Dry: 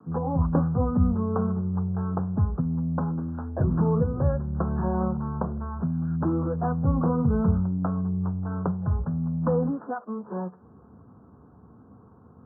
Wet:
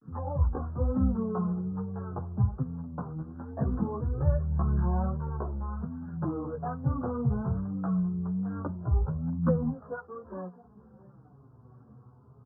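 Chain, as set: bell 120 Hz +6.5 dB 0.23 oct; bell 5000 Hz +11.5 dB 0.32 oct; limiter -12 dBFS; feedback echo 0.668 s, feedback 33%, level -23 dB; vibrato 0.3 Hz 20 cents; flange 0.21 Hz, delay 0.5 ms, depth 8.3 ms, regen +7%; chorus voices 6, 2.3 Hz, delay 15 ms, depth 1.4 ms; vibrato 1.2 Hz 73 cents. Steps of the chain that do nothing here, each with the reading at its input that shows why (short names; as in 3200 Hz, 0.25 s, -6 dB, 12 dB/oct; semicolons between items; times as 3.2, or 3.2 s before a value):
bell 5000 Hz: input band ends at 1100 Hz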